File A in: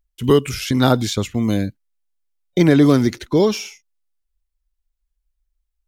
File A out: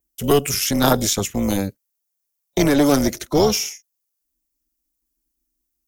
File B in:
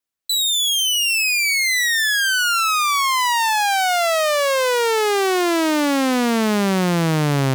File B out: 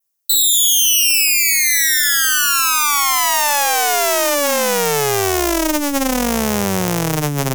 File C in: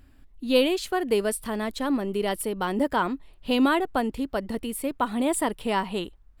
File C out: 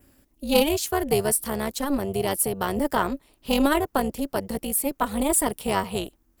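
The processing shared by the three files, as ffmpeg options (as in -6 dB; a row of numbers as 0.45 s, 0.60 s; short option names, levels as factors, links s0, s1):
-filter_complex "[0:a]highpass=f=150:p=1,adynamicequalizer=threshold=0.00891:dfrequency=4500:dqfactor=3.1:tfrequency=4500:tqfactor=3.1:attack=5:release=100:ratio=0.375:range=2.5:mode=cutabove:tftype=bell,tremolo=f=290:d=0.788,acrossover=split=470[s0][s1];[s0]asoftclip=type=tanh:threshold=0.1[s2];[s2][s1]amix=inputs=2:normalize=0,equalizer=f=1600:t=o:w=2.2:g=-3,aeval=exprs='0.422*(cos(1*acos(clip(val(0)/0.422,-1,1)))-cos(1*PI/2))+0.0237*(cos(4*acos(clip(val(0)/0.422,-1,1)))-cos(4*PI/2))':c=same,aexciter=amount=1.4:drive=9.3:freq=5200,volume=2"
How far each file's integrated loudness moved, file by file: -1.5 LU, +3.5 LU, +1.5 LU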